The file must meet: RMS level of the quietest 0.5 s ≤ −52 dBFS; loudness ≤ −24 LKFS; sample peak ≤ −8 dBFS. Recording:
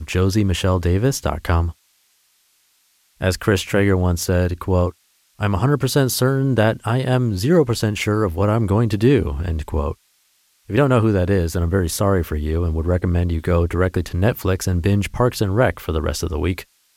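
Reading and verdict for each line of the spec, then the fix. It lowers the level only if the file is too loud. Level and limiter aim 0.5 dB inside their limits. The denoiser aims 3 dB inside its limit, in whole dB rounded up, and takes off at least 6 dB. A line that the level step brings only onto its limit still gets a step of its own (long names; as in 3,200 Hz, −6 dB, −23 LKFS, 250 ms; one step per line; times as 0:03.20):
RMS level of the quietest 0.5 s −61 dBFS: in spec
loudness −19.5 LKFS: out of spec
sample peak −4.5 dBFS: out of spec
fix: level −5 dB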